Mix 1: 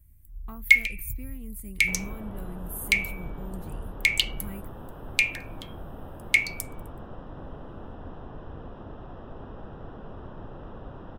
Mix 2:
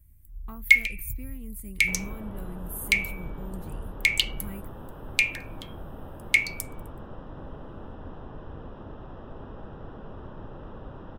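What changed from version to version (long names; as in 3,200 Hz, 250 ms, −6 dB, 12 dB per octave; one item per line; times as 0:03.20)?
master: add notch filter 710 Hz, Q 19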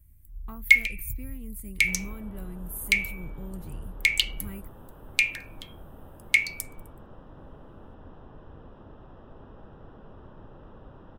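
second sound −6.5 dB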